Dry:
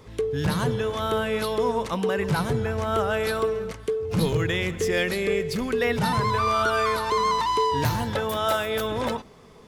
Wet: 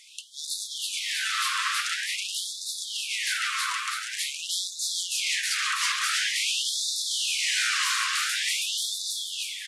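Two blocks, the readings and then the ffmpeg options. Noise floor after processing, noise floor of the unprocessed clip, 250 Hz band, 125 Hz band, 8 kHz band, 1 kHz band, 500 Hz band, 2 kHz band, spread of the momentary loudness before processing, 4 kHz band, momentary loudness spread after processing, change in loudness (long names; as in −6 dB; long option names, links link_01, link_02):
−39 dBFS, −48 dBFS, below −40 dB, below −40 dB, +12.5 dB, −10.0 dB, below −40 dB, +2.0 dB, 4 LU, +8.0 dB, 7 LU, −1.5 dB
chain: -filter_complex "[0:a]highshelf=frequency=4500:gain=10.5,asplit=2[link_01][link_02];[link_02]asplit=4[link_03][link_04][link_05][link_06];[link_03]adelay=319,afreqshift=-120,volume=-6dB[link_07];[link_04]adelay=638,afreqshift=-240,volume=-14.9dB[link_08];[link_05]adelay=957,afreqshift=-360,volume=-23.7dB[link_09];[link_06]adelay=1276,afreqshift=-480,volume=-32.6dB[link_10];[link_07][link_08][link_09][link_10]amix=inputs=4:normalize=0[link_11];[link_01][link_11]amix=inputs=2:normalize=0,acrusher=bits=8:mix=0:aa=0.000001,aeval=exprs='0.0668*(abs(mod(val(0)/0.0668+3,4)-2)-1)':channel_layout=same,lowpass=frequency=9700:width=0.5412,lowpass=frequency=9700:width=1.3066,asplit=2[link_12][link_13];[link_13]aecho=0:1:328|656|984|1312|1640|1968|2296:0.668|0.361|0.195|0.105|0.0568|0.0307|0.0166[link_14];[link_12][link_14]amix=inputs=2:normalize=0,afftfilt=real='re*gte(b*sr/1024,990*pow(3500/990,0.5+0.5*sin(2*PI*0.47*pts/sr)))':imag='im*gte(b*sr/1024,990*pow(3500/990,0.5+0.5*sin(2*PI*0.47*pts/sr)))':win_size=1024:overlap=0.75,volume=3.5dB"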